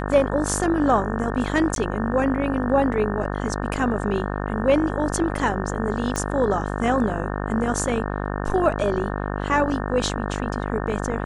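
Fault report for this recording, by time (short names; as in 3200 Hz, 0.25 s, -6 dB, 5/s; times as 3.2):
buzz 50 Hz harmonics 36 -27 dBFS
1.75–1.76 gap 12 ms
6.16 pop -11 dBFS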